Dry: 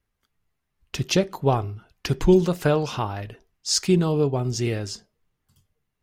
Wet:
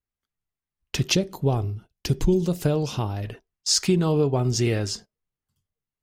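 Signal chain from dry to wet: gate -44 dBFS, range -18 dB; 1.15–3.24 s: peaking EQ 1.4 kHz -11.5 dB 2.4 oct; compression 3:1, threshold -22 dBFS, peak gain reduction 7.5 dB; trim +4 dB

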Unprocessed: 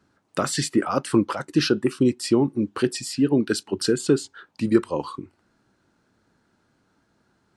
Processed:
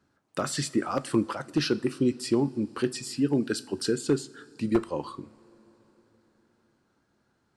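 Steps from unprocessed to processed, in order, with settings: one-sided wavefolder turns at -10.5 dBFS; two-slope reverb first 0.42 s, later 4.4 s, from -18 dB, DRR 13.5 dB; trim -5.5 dB

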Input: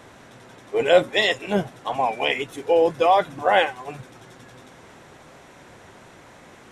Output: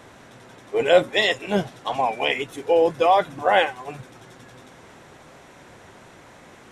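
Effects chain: 1.53–2.01 s: dynamic bell 4.4 kHz, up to +6 dB, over -51 dBFS, Q 1

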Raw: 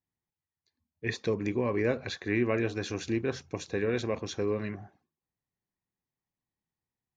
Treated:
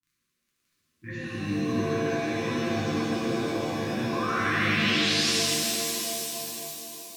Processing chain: high-pass 90 Hz; resonant high shelf 2 kHz -10.5 dB, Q 1.5; level held to a coarse grid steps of 12 dB; crackle 15 per s -55 dBFS; vibrato 0.58 Hz 30 cents; painted sound rise, 3.82–5.30 s, 660–5800 Hz -37 dBFS; brick-wall FIR band-stop 360–1000 Hz; pitch-shifted reverb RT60 3.6 s, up +7 st, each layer -2 dB, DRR -10.5 dB; trim -2 dB

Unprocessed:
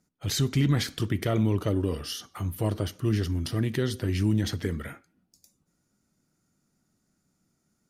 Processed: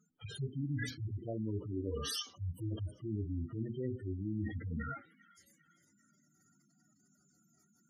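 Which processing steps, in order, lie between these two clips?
harmonic-percussive separation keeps harmonic; bass shelf 220 Hz -8 dB; hum notches 60/120/180/240/300/360/420 Hz; on a send: feedback echo behind a high-pass 398 ms, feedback 52%, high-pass 1.6 kHz, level -19 dB; on the sum: reverse; compression 6:1, threshold -43 dBFS, peak gain reduction 17.5 dB; reverse; spectral gate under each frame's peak -15 dB strong; treble shelf 3.5 kHz +5 dB; trim +7.5 dB

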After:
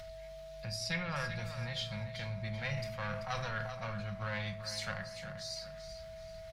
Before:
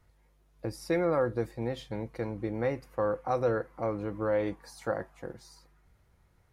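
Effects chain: single-diode clipper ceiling -25 dBFS; in parallel at +2 dB: upward compressor, threshold -36 dBFS; on the sum: FFT filter 200 Hz 0 dB, 280 Hz -27 dB, 620 Hz -9 dB, 4.3 kHz +4 dB, 10 kHz -11 dB; on a send: feedback delay 387 ms, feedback 35%, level -11 dB; 0.76–1.16 s: on the sum: low-pass that closes with the level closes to 450 Hz, closed at -19 dBFS; amplifier tone stack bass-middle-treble 5-5-5; simulated room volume 770 m³, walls furnished, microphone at 0.97 m; whistle 650 Hz -53 dBFS; 2.41–4.06 s: decay stretcher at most 40 dB/s; trim +7 dB

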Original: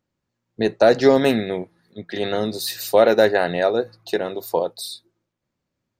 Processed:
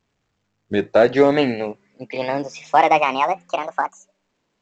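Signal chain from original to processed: gliding tape speed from 74% -> 186%; resonant high shelf 3.9 kHz -10 dB, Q 1.5; A-law 128 kbps 16 kHz

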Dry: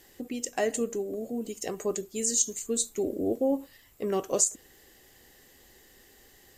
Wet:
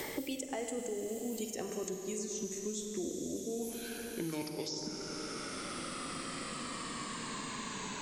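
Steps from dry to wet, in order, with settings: gliding tape speed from 111% -> 53%; reverse; compression, threshold -38 dBFS, peak gain reduction 17.5 dB; reverse; Schroeder reverb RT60 2.3 s, combs from 33 ms, DRR 3.5 dB; three bands compressed up and down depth 100%; trim +1 dB

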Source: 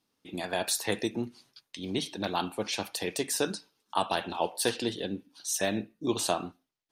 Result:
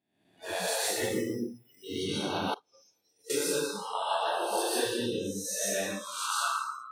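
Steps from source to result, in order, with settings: reverse spectral sustain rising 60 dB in 0.80 s; compression 1.5:1, threshold -39 dBFS, peak gain reduction 7 dB; 0.91–1.84 s: careless resampling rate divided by 8×, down filtered, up hold; 5.74–6.47 s: resonant high-pass 1.3 kHz, resonance Q 5; plate-style reverb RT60 1.4 s, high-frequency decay 0.75×, pre-delay 110 ms, DRR -6.5 dB; 2.54–3.30 s: expander -14 dBFS; spectral noise reduction 26 dB; trim -4 dB

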